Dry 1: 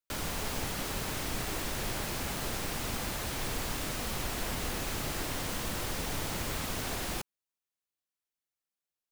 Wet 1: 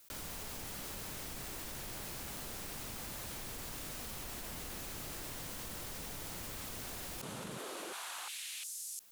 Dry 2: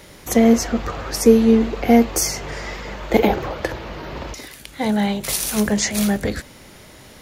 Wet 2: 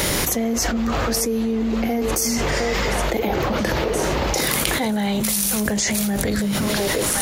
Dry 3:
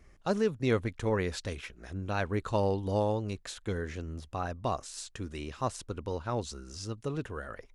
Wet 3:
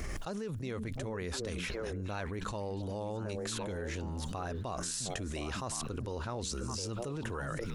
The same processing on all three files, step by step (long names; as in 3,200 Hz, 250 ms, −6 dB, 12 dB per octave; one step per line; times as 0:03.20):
high-shelf EQ 6,100 Hz +7.5 dB
on a send: echo through a band-pass that steps 355 ms, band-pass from 170 Hz, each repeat 1.4 octaves, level −6.5 dB
on the sum: envelope flattener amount 100%
level −14 dB